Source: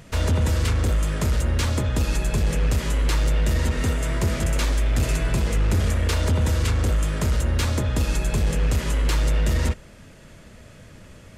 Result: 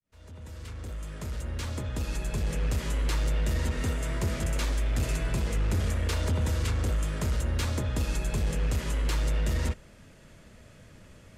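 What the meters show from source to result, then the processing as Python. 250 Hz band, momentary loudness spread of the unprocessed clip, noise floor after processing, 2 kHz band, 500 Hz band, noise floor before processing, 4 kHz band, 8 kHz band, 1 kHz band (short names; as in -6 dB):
-7.5 dB, 2 LU, -53 dBFS, -7.5 dB, -7.5 dB, -46 dBFS, -7.5 dB, -7.5 dB, -7.5 dB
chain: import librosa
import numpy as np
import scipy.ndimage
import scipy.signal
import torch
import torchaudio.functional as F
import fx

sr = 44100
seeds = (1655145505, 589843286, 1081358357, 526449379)

y = fx.fade_in_head(x, sr, length_s=2.85)
y = y * librosa.db_to_amplitude(-6.5)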